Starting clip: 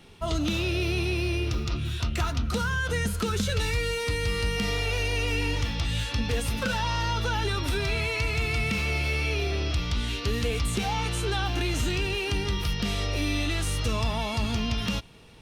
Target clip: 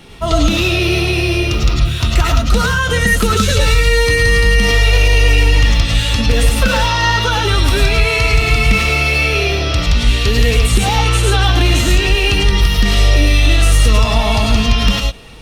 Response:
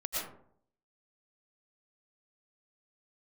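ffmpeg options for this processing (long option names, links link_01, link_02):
-filter_complex "[1:a]atrim=start_sample=2205,afade=type=out:start_time=0.16:duration=0.01,atrim=end_sample=7497[link_01];[0:a][link_01]afir=irnorm=-1:irlink=0,alimiter=level_in=15.5dB:limit=-1dB:release=50:level=0:latency=1,volume=-1dB"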